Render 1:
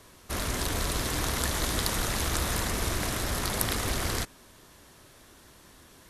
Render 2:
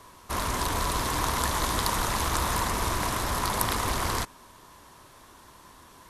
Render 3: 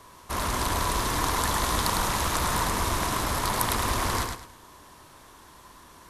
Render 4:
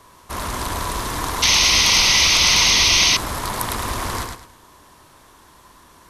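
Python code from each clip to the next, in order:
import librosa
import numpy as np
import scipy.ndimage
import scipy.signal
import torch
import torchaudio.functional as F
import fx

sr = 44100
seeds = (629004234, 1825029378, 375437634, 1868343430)

y1 = fx.peak_eq(x, sr, hz=1000.0, db=11.5, octaves=0.55)
y2 = fx.echo_feedback(y1, sr, ms=105, feedback_pct=27, wet_db=-5)
y3 = fx.spec_paint(y2, sr, seeds[0], shape='noise', start_s=1.42, length_s=1.75, low_hz=1900.0, high_hz=6500.0, level_db=-17.0)
y3 = y3 * 10.0 ** (1.5 / 20.0)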